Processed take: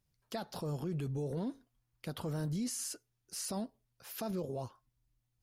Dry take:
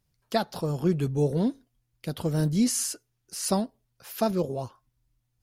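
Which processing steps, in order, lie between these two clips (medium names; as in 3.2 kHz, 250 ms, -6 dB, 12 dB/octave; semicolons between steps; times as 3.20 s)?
1.30–2.54 s: peaking EQ 1.1 kHz +6 dB 1.3 oct; peak limiter -24.5 dBFS, peak gain reduction 12 dB; trim -5.5 dB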